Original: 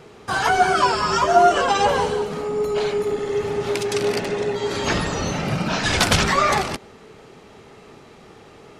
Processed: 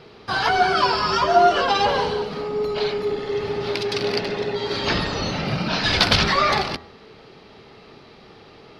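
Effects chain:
high shelf with overshoot 5,900 Hz −9 dB, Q 3
hum removal 82.48 Hz, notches 24
level −1 dB

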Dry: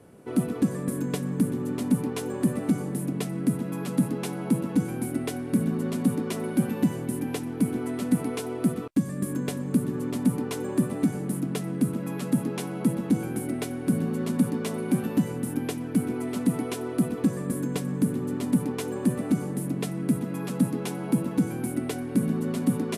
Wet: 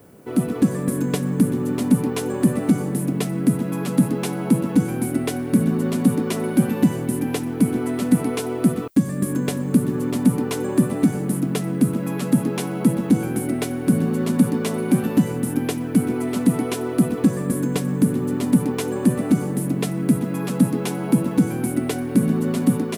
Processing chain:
automatic gain control gain up to 3 dB
background noise violet −64 dBFS
level +3.5 dB

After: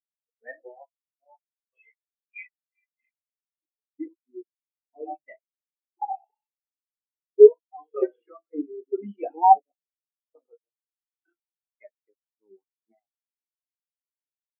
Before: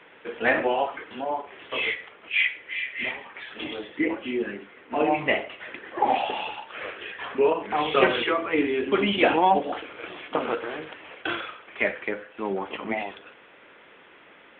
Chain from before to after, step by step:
centre clipping without the shift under −29 dBFS
every bin expanded away from the loudest bin 4 to 1
level +3.5 dB

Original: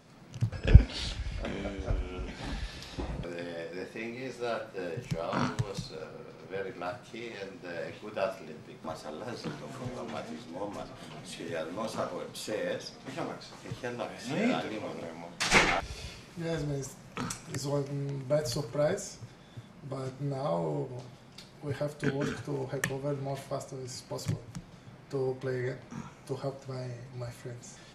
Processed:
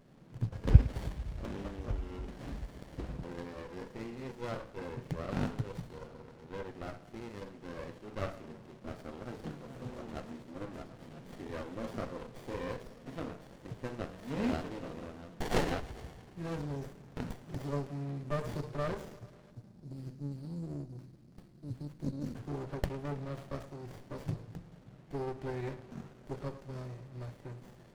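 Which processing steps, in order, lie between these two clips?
gain on a spectral selection 0:19.51–0:22.35, 370–4,000 Hz −29 dB
on a send: bucket-brigade delay 107 ms, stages 4,096, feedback 70%, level −19 dB
on the sum: windowed peak hold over 33 samples
level −3.5 dB

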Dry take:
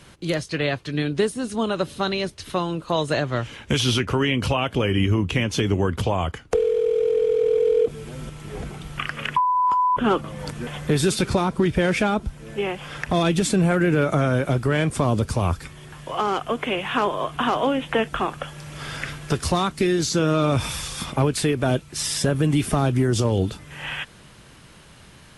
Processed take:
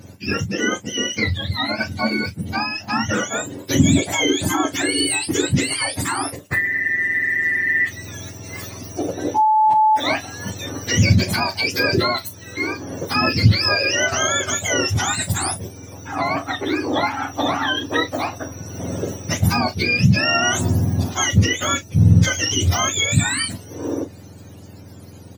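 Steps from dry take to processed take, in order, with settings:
frequency axis turned over on the octave scale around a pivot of 930 Hz
double-tracking delay 36 ms −12 dB
level +4 dB

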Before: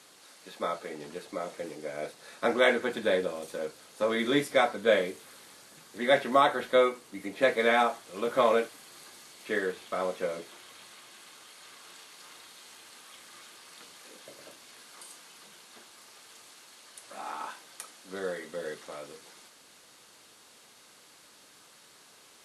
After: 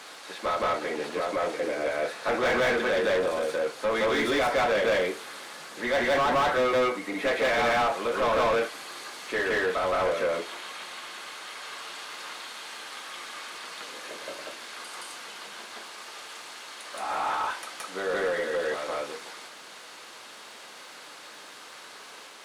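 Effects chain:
backwards echo 170 ms −3.5 dB
mid-hump overdrive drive 28 dB, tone 2,200 Hz, clips at −9.5 dBFS
surface crackle 450 per second −45 dBFS
level −7 dB

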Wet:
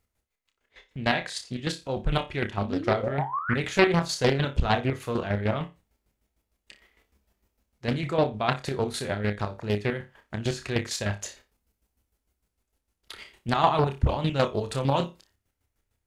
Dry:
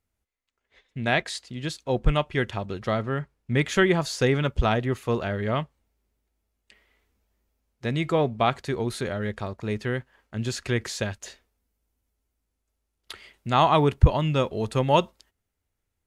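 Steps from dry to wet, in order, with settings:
sound drawn into the spectrogram rise, 0:02.62–0:03.57, 200–1,800 Hz −31 dBFS
square-wave tremolo 6.6 Hz, depth 65%, duty 35%
flutter between parallel walls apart 5 metres, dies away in 0.23 s
in parallel at +0.5 dB: downward compressor, threshold −36 dBFS, peak gain reduction 19.5 dB
on the sum: highs frequency-modulated by the lows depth 0.97 ms

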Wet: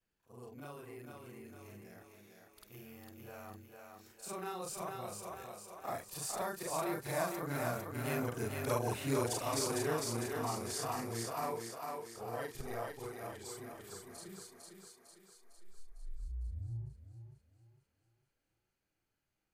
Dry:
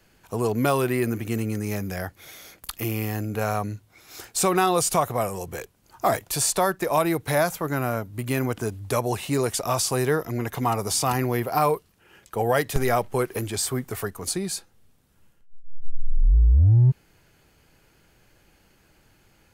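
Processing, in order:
every overlapping window played backwards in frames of 101 ms
source passing by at 0:08.72, 10 m/s, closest 12 metres
feedback echo with a high-pass in the loop 453 ms, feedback 54%, high-pass 240 Hz, level −3.5 dB
level −7 dB

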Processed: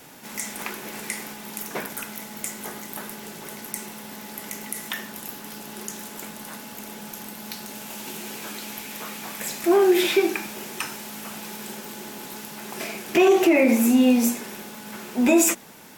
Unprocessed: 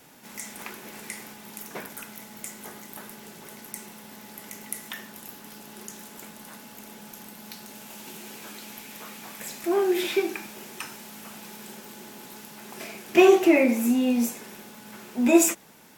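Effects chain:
mains-hum notches 60/120/180/240 Hz
boost into a limiter +14.5 dB
level −8 dB

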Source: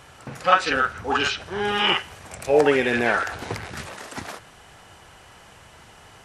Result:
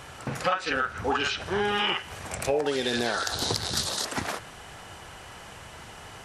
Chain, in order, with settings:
0:02.66–0:04.05: high shelf with overshoot 3,100 Hz +9 dB, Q 3
downward compressor 8 to 1, threshold −27 dBFS, peak gain reduction 16.5 dB
level +4 dB

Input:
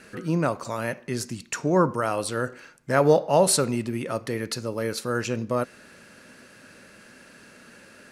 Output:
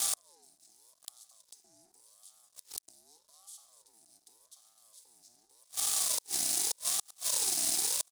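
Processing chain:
compressor on every frequency bin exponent 0.4
elliptic band-stop filter 270–5,100 Hz, stop band 40 dB
comb filter 5.6 ms, depth 38%
dead-zone distortion −36 dBFS
leveller curve on the samples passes 1
gate with flip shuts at −19 dBFS, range −37 dB
tilt shelving filter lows −9.5 dB, about 1,200 Hz
ring modulator whose carrier an LFO sweeps 740 Hz, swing 35%, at 0.85 Hz

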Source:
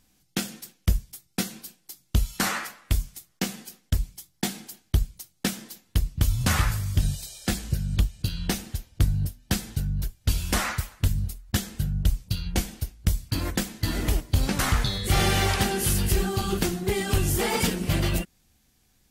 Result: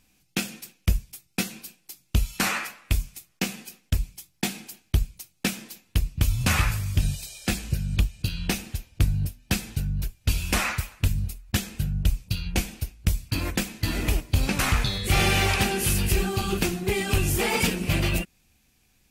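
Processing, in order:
parametric band 2,500 Hz +10 dB 0.26 octaves

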